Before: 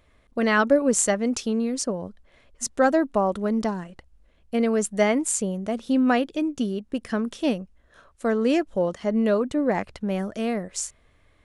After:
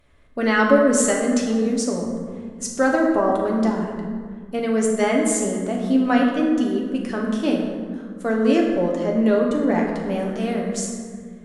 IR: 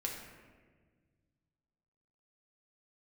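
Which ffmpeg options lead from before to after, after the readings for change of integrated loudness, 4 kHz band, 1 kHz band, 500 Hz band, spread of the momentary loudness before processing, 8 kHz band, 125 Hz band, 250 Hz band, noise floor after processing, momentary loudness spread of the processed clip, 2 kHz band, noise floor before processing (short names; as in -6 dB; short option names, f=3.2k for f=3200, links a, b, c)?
+3.5 dB, +2.0 dB, +3.0 dB, +3.5 dB, 11 LU, +1.5 dB, +3.5 dB, +4.5 dB, -38 dBFS, 12 LU, +3.5 dB, -61 dBFS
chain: -filter_complex "[1:a]atrim=start_sample=2205,asetrate=32634,aresample=44100[a];[0:a][a]afir=irnorm=-1:irlink=0"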